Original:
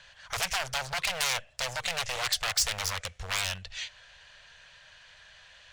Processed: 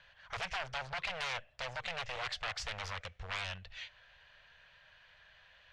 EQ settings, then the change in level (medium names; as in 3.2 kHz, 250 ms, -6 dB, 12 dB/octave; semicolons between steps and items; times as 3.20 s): low-pass 3.1 kHz 12 dB/octave; -6.0 dB